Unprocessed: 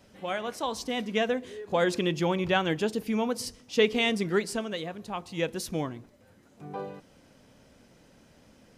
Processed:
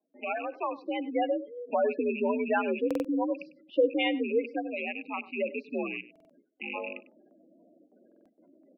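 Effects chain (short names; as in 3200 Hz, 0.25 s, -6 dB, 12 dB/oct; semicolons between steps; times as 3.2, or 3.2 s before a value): rattling part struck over -43 dBFS, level -21 dBFS; spectral gate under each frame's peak -10 dB strong; gate with hold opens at -51 dBFS; outdoor echo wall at 17 m, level -18 dB; mistuned SSB +64 Hz 150–2900 Hz; stuck buffer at 2.86/6.11/8.07, samples 2048, times 3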